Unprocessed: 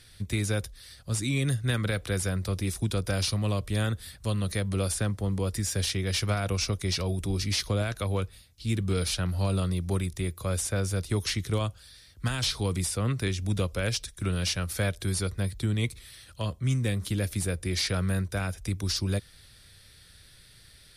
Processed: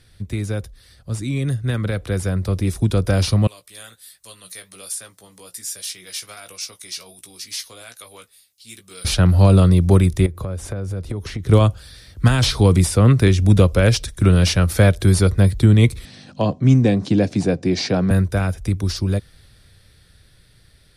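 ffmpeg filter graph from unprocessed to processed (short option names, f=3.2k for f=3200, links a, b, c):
-filter_complex "[0:a]asettb=1/sr,asplit=3[a][b][c];[a]atrim=end=3.474[d];[b]atrim=start=3.47:end=9.05,asetpts=PTS-STARTPTS,afade=t=in:d=0.004:c=qsin,afade=t=out:st=5.576:d=0.004:c=qsin,aderivative,flanger=delay=1.5:depth=6.2:regen=77:speed=1.3:shape=triangular,asplit=2[e][f];[f]adelay=17,volume=-7.5dB[g];[e][g]amix=inputs=2:normalize=0,atrim=end_sample=246078[h];[c]atrim=start=9.046[i];[d][h]acrossfade=d=0.004:c1=hsin:c2=qsin[j];[j][i]acrossfade=d=0.004:c1=qsin:c2=hsin,asettb=1/sr,asplit=3[k][l][m];[k]atrim=end=10.264[n];[l]atrim=start=10.26:end=11.49,asetpts=PTS-STARTPTS,afade=t=in:d=0.004:c=qsin,afade=t=out:st=1.226:d=0.004:c=qsin,highshelf=f=2.1k:g=-9,acompressor=threshold=-37dB:ratio=16:attack=3.2:release=140:knee=1:detection=peak[o];[m]atrim=start=11.486[p];[n][o]acrossfade=d=0.004:c1=hsin:c2=qsin[q];[q][p]acrossfade=d=0.004:c1=qsin:c2=hsin,asettb=1/sr,asplit=3[r][s][t];[r]atrim=end=16.054[u];[s]atrim=start=16.05:end=18.11,asetpts=PTS-STARTPTS,afade=t=in:d=0.004:c=qsin,afade=t=out:st=2.056:d=0.004:c=qsin,aeval=exprs='val(0)+0.00224*(sin(2*PI*50*n/s)+sin(2*PI*2*50*n/s)/2+sin(2*PI*3*50*n/s)/3+sin(2*PI*4*50*n/s)/4+sin(2*PI*5*50*n/s)/5)':c=same,highpass=f=130:w=0.5412,highpass=f=130:w=1.3066,equalizer=f=280:t=q:w=4:g=5,equalizer=f=750:t=q:w=4:g=7,equalizer=f=1.3k:t=q:w=4:g=-7,equalizer=f=2k:t=q:w=4:g=-5,equalizer=f=3.3k:t=q:w=4:g=-5,lowpass=f=6.5k:w=0.5412,lowpass=f=6.5k:w=1.3066[v];[t]atrim=start=18.106[w];[u][v]acrossfade=d=0.004:c1=hsin:c2=qsin[x];[x][w]acrossfade=d=0.004:c1=qsin:c2=hsin,tiltshelf=f=1.4k:g=4.5,dynaudnorm=f=370:g=17:m=14dB"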